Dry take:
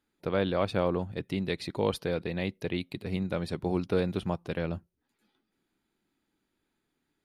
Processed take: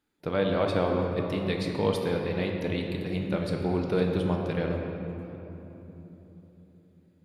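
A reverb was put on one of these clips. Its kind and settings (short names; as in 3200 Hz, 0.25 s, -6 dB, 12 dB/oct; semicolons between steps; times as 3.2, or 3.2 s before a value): shoebox room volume 220 m³, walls hard, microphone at 0.43 m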